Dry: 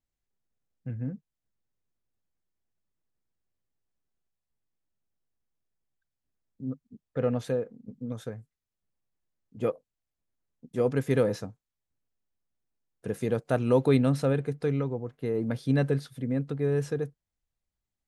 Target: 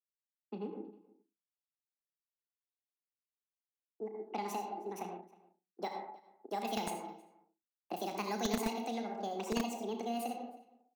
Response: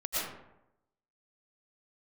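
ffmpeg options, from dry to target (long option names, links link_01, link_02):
-filter_complex "[0:a]asplit=2[link_01][link_02];[1:a]atrim=start_sample=2205,lowshelf=frequency=490:gain=5[link_03];[link_02][link_03]afir=irnorm=-1:irlink=0,volume=-10dB[link_04];[link_01][link_04]amix=inputs=2:normalize=0,asetrate=72765,aresample=44100,anlmdn=0.0251,acrossover=split=190|3000[link_05][link_06][link_07];[link_06]acompressor=threshold=-34dB:ratio=10[link_08];[link_05][link_08][link_07]amix=inputs=3:normalize=0,asplit=2[link_09][link_10];[link_10]adelay=34,volume=-10dB[link_11];[link_09][link_11]amix=inputs=2:normalize=0,asplit=2[link_12][link_13];[link_13]adelay=314.9,volume=-21dB,highshelf=frequency=4000:gain=-7.08[link_14];[link_12][link_14]amix=inputs=2:normalize=0,acrossover=split=230|1100[link_15][link_16][link_17];[link_15]acrusher=bits=4:mix=0:aa=0.000001[link_18];[link_18][link_16][link_17]amix=inputs=3:normalize=0,volume=-2.5dB"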